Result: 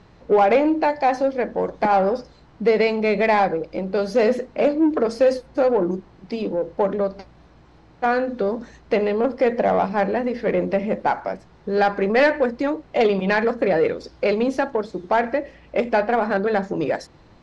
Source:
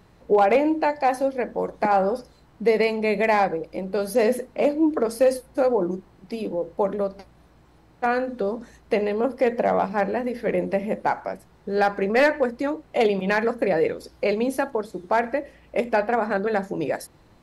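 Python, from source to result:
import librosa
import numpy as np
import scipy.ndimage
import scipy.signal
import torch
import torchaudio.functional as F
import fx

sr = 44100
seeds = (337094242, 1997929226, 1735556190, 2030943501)

p1 = 10.0 ** (-22.5 / 20.0) * np.tanh(x / 10.0 ** (-22.5 / 20.0))
p2 = x + (p1 * 10.0 ** (-4.0 / 20.0))
y = scipy.signal.sosfilt(scipy.signal.butter(4, 6300.0, 'lowpass', fs=sr, output='sos'), p2)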